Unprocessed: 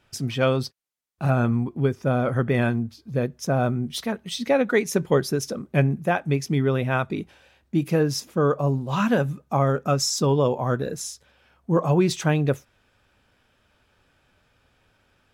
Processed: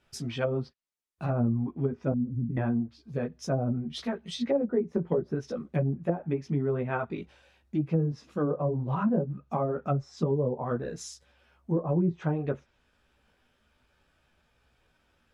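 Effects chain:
0:02.12–0:02.57: elliptic band-stop filter 260–7,500 Hz, stop band 40 dB
multi-voice chorus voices 6, 0.94 Hz, delay 15 ms, depth 3 ms
treble cut that deepens with the level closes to 450 Hz, closed at −19 dBFS
level −2.5 dB

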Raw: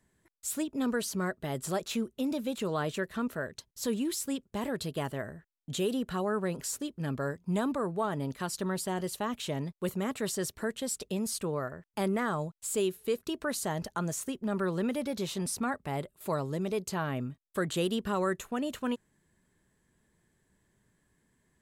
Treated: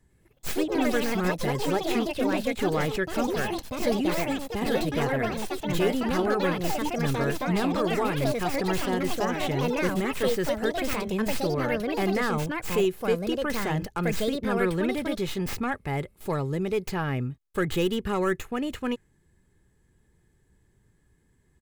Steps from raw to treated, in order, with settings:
stylus tracing distortion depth 0.15 ms
low-shelf EQ 250 Hz +11 dB
comb filter 2.4 ms, depth 36%
dynamic equaliser 2,100 Hz, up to +8 dB, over −53 dBFS, Q 1.7
delay with pitch and tempo change per echo 105 ms, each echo +4 semitones, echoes 3

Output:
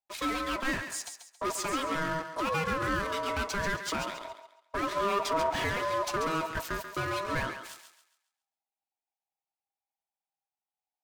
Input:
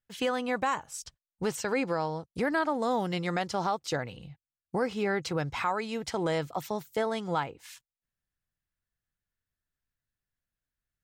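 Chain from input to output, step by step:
0:04.92–0:06.10: low-shelf EQ 350 Hz +10 dB
in parallel at −9.5 dB: fuzz pedal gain 39 dB, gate −48 dBFS
on the sum: flanger 0.49 Hz, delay 4.8 ms, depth 3.5 ms, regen −48%
ring modulation 800 Hz
feedback echo with a high-pass in the loop 137 ms, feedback 35%, high-pass 410 Hz, level −8 dB
level −3.5 dB

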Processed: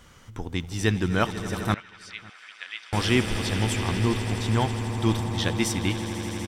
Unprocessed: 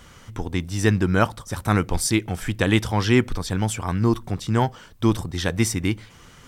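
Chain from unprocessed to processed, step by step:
on a send: echo that builds up and dies away 82 ms, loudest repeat 8, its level −15 dB
on the sum: dynamic equaliser 3,300 Hz, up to +7 dB, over −41 dBFS, Q 1.3
0:01.74–0:02.93: four-pole ladder band-pass 2,400 Hz, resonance 25%
slap from a distant wall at 95 metres, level −24 dB
level −5 dB

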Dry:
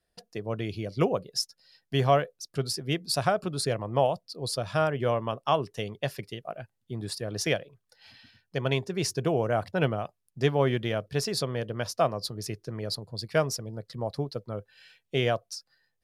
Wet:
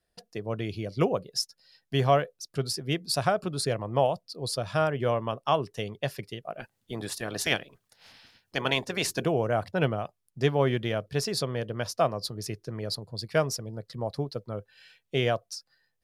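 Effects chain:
0:06.58–0:09.24: ceiling on every frequency bin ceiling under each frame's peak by 17 dB

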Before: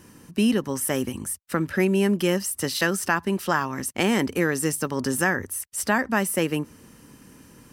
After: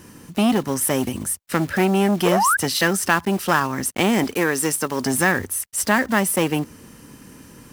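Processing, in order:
one scale factor per block 5 bits
0:02.25–0:02.57: sound drawn into the spectrogram rise 420–1,700 Hz −23 dBFS
0:04.24–0:05.06: low-shelf EQ 180 Hz −11 dB
saturating transformer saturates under 920 Hz
level +5.5 dB

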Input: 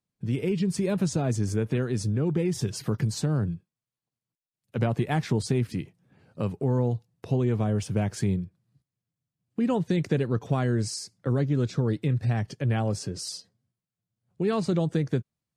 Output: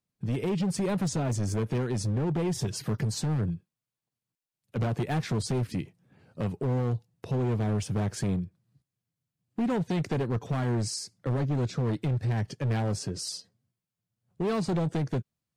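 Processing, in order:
hard clipping −24 dBFS, distortion −11 dB

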